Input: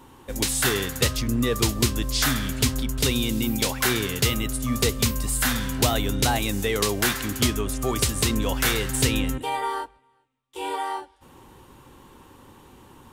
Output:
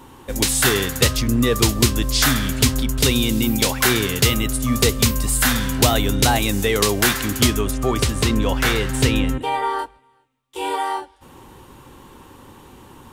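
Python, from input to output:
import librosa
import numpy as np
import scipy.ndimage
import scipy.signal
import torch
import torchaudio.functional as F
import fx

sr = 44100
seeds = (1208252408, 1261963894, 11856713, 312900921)

y = fx.high_shelf(x, sr, hz=5500.0, db=-10.5, at=(7.71, 9.79))
y = y * librosa.db_to_amplitude(5.5)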